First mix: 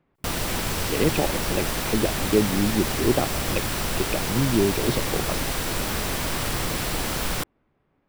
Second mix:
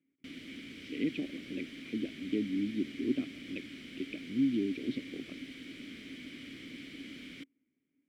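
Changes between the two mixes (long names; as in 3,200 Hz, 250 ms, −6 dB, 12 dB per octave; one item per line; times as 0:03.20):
background −5.5 dB
master: add formant filter i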